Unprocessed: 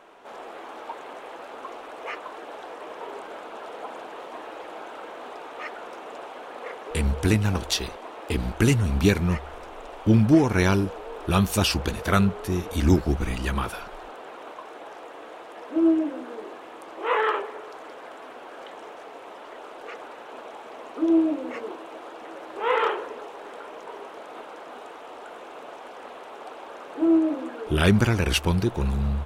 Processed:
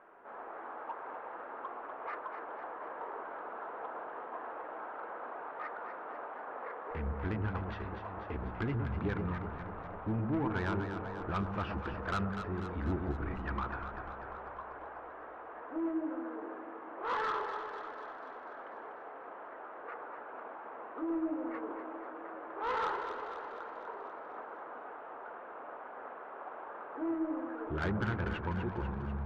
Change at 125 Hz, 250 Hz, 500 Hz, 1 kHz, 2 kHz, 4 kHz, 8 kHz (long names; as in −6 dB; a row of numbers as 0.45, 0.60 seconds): −13.5 dB, −14.0 dB, −11.5 dB, −6.5 dB, −10.0 dB, −21.0 dB, below −30 dB